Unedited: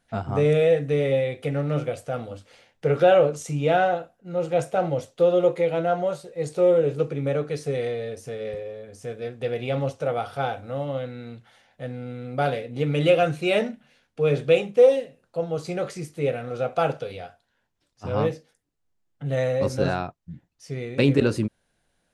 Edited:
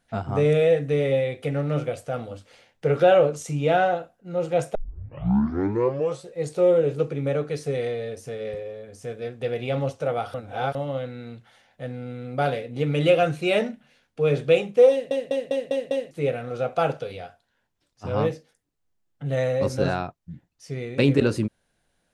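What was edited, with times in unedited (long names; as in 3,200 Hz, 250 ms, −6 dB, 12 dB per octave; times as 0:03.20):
0:04.75: tape start 1.53 s
0:10.34–0:10.75: reverse
0:14.91: stutter in place 0.20 s, 6 plays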